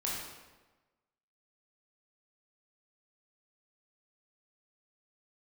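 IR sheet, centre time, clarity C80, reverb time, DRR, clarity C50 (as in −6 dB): 74 ms, 3.0 dB, 1.2 s, −5.5 dB, 0.0 dB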